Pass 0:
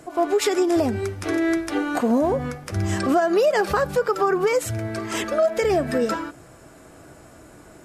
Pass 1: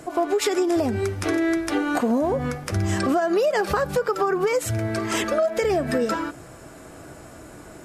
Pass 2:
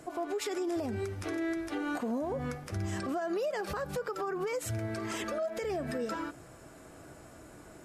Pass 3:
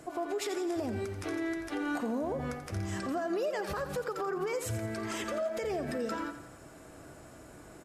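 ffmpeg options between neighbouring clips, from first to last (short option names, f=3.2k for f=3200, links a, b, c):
-af "acompressor=threshold=-25dB:ratio=2.5,volume=4dB"
-af "alimiter=limit=-17.5dB:level=0:latency=1:release=71,volume=-9dB"
-af "aecho=1:1:86|172|258|344|430:0.282|0.138|0.0677|0.0332|0.0162"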